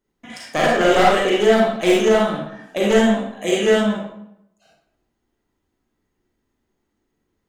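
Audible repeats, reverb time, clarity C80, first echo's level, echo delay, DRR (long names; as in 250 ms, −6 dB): no echo audible, 0.80 s, 4.0 dB, no echo audible, no echo audible, −5.5 dB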